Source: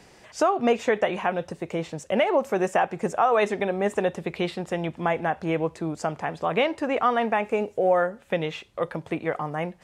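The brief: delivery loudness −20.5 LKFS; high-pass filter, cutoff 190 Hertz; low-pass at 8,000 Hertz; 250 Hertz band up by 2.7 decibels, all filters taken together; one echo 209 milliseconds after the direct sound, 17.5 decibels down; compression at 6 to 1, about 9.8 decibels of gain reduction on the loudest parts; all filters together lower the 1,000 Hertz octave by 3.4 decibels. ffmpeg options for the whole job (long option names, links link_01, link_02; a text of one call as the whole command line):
ffmpeg -i in.wav -af "highpass=190,lowpass=8000,equalizer=frequency=250:width_type=o:gain=6,equalizer=frequency=1000:width_type=o:gain=-5.5,acompressor=threshold=-27dB:ratio=6,aecho=1:1:209:0.133,volume=12dB" out.wav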